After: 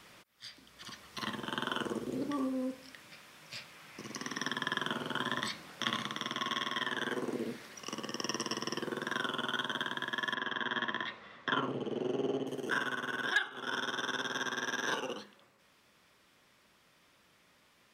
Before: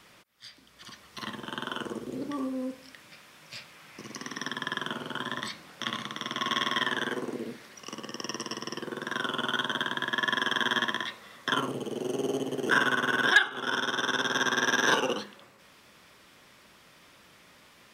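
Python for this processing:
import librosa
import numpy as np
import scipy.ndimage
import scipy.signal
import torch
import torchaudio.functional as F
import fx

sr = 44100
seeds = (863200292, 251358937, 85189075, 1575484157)

y = fx.lowpass(x, sr, hz=3200.0, slope=12, at=(10.34, 12.47))
y = fx.rider(y, sr, range_db=5, speed_s=0.5)
y = y * 10.0 ** (-5.5 / 20.0)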